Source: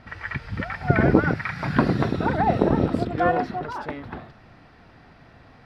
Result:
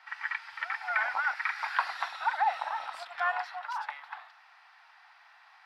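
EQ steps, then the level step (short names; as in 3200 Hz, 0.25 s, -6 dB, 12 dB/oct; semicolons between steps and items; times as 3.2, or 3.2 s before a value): elliptic high-pass 830 Hz, stop band 50 dB; -1.5 dB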